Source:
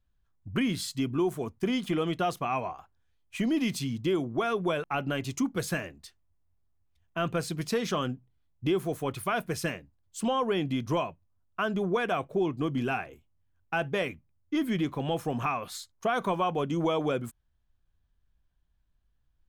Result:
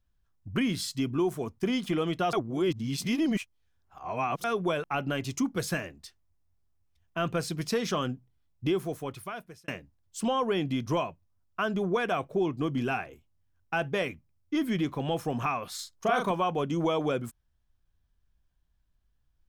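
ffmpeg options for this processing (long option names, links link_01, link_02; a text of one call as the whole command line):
ffmpeg -i in.wav -filter_complex "[0:a]asettb=1/sr,asplit=3[link_01][link_02][link_03];[link_01]atrim=end=15.754[link_04];[link_02]atrim=start=15.75:end=16.31,asetpts=PTS-STARTPTS,afade=type=in:duration=0.004:curve=qsin,afade=type=out:start_time=0.556:duration=0.004:curve=qsin,asplit=2[link_05][link_06];[link_06]adelay=37,volume=-3dB[link_07];[link_05][link_07]amix=inputs=2:normalize=0,atrim=end_sample=24696[link_08];[link_03]atrim=start=16.306[link_09];[link_04][link_08]acrossfade=duration=0.004:curve1=hsin:curve2=qsin[link_10];[link_10][link_09]acrossfade=duration=0.004:curve1=qsin:curve2=hsin,asplit=4[link_11][link_12][link_13][link_14];[link_11]atrim=end=2.332[link_15];[link_12]atrim=start=2.328:end=4.442,asetpts=PTS-STARTPTS,areverse[link_16];[link_13]atrim=start=4.438:end=9.68,asetpts=PTS-STARTPTS,afade=type=out:start_time=4.212:duration=1.03[link_17];[link_14]atrim=start=9.68,asetpts=PTS-STARTPTS,afade=type=in:duration=0.004:curve=hsin[link_18];[link_15][link_16]acrossfade=duration=0.004:curve1=hsin:curve2=hsin[link_19];[link_17][link_18]concat=n=2:v=0:a=1[link_20];[link_19][link_20]acrossfade=duration=0.004:curve1=hsin:curve2=hsin,equalizer=frequency=5400:width_type=o:width=0.3:gain=4" out.wav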